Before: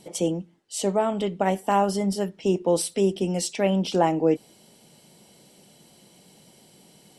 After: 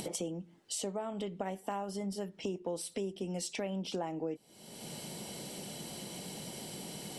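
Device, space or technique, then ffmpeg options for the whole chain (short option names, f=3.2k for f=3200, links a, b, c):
upward and downward compression: -af "acompressor=mode=upward:threshold=-24dB:ratio=2.5,acompressor=threshold=-29dB:ratio=5,volume=-5.5dB"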